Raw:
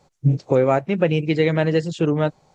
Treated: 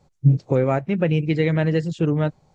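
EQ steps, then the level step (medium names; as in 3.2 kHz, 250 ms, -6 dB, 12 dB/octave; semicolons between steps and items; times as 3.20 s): dynamic bell 1.9 kHz, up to +4 dB, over -34 dBFS, Q 1.2; bass shelf 230 Hz +11.5 dB; -6.0 dB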